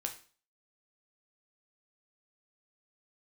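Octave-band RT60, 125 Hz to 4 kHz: 0.45, 0.45, 0.40, 0.40, 0.40, 0.40 seconds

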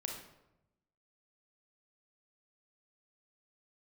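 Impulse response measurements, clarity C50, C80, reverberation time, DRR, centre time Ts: 4.0 dB, 7.0 dB, 0.90 s, 1.0 dB, 37 ms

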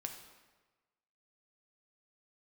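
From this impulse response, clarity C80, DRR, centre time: 8.5 dB, 3.5 dB, 28 ms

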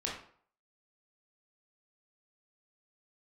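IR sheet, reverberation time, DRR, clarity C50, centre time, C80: 0.55 s, −4.0 dB, 4.0 dB, 38 ms, 8.5 dB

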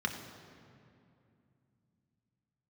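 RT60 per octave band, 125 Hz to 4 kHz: 4.2, 3.9, 2.7, 2.4, 2.1, 1.6 seconds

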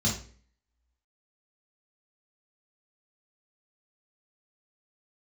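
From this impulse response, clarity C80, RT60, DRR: 12.0 dB, 0.45 s, −5.5 dB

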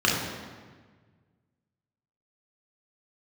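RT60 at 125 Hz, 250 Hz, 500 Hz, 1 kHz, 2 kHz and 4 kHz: 2.3, 1.8, 1.5, 1.4, 1.4, 1.1 seconds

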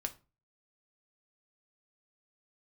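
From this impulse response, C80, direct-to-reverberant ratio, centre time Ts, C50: 23.0 dB, 5.5 dB, 5 ms, 17.0 dB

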